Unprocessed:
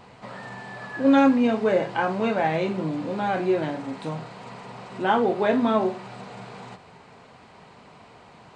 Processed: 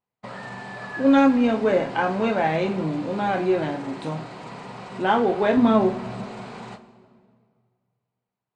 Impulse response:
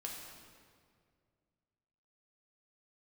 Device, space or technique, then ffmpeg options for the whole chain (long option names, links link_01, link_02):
saturated reverb return: -filter_complex "[0:a]asettb=1/sr,asplit=3[link_01][link_02][link_03];[link_01]atrim=end=5.574[link_04];[link_02]atrim=start=5.57:end=6.26,asetpts=PTS-STARTPTS,afade=type=in:duration=0.004:curve=qsin,afade=type=out:start_time=0.686:duration=0.004:curve=qsin,lowshelf=frequency=210:gain=11[link_05];[link_03]atrim=start=6.256[link_06];[link_04][link_05]acrossfade=duration=0.004:curve1=hsin:curve2=qsin[link_07];[link_07][link_06]acrossfade=duration=0.004:curve1=qsin:curve2=hsin,agate=range=-42dB:threshold=-42dB:ratio=16:detection=peak,asplit=2[link_08][link_09];[1:a]atrim=start_sample=2205[link_10];[link_09][link_10]afir=irnorm=-1:irlink=0,asoftclip=type=tanh:threshold=-24.5dB,volume=-6.5dB[link_11];[link_08][link_11]amix=inputs=2:normalize=0"